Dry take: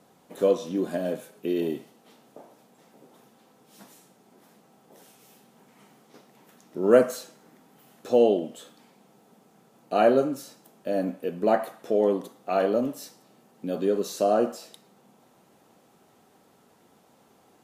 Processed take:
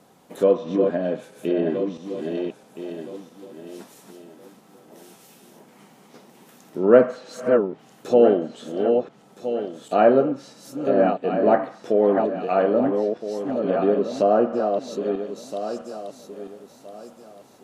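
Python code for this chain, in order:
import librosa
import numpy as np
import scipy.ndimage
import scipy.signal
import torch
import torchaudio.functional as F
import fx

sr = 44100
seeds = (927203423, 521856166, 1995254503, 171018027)

y = fx.reverse_delay_fb(x, sr, ms=659, feedback_pct=50, wet_db=-5)
y = fx.env_lowpass_down(y, sr, base_hz=2200.0, full_db=-22.0)
y = F.gain(torch.from_numpy(y), 4.0).numpy()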